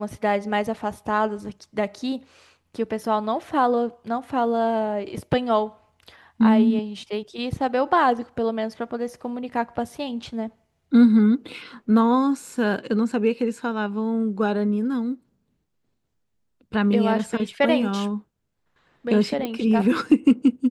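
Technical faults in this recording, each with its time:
19.45 s: pop -15 dBFS

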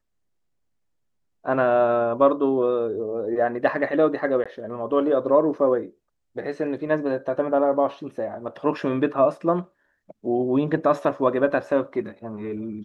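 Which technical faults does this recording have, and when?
4.44–4.46 s: dropout 16 ms

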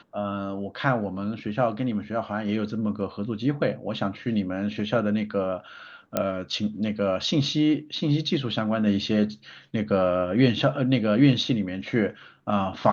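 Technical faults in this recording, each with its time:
6.17 s: pop -9 dBFS

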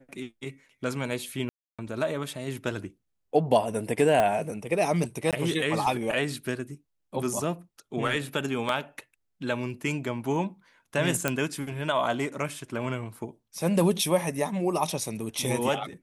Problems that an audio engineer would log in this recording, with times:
1.49–1.79 s: dropout 296 ms
4.20 s: pop -12 dBFS
5.31–5.33 s: dropout 17 ms
8.69 s: dropout 2.1 ms
11.28 s: pop -9 dBFS

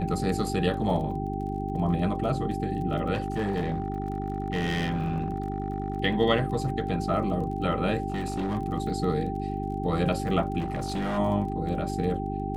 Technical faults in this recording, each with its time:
crackle 23 per s -37 dBFS
hum 50 Hz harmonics 8 -32 dBFS
whine 780 Hz -34 dBFS
3.14–5.98 s: clipped -23 dBFS
8.10–8.57 s: clipped -25 dBFS
10.59–11.19 s: clipped -25.5 dBFS

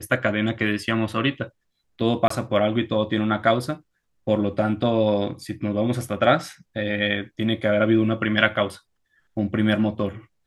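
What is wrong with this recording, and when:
2.28–2.30 s: dropout 24 ms

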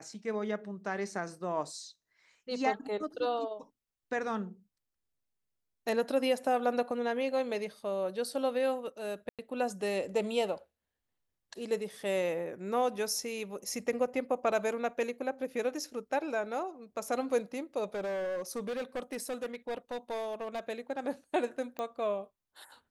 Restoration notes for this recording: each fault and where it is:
9.29–9.39 s: dropout 97 ms
17.94–20.60 s: clipped -32 dBFS
21.79 s: pop -23 dBFS

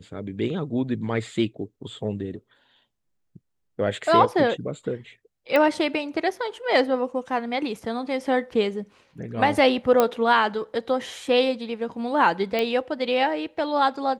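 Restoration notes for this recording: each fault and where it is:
5.56 s: pop -10 dBFS
10.00 s: pop -6 dBFS
12.59 s: pop -12 dBFS

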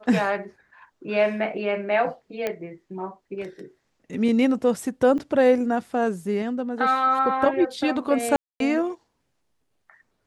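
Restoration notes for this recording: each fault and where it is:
2.47 s: pop -13 dBFS
5.18–5.19 s: dropout 6.2 ms
8.36–8.60 s: dropout 242 ms

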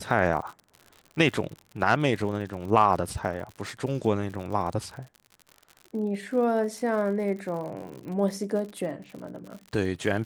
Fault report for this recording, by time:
crackle 72 per s -36 dBFS

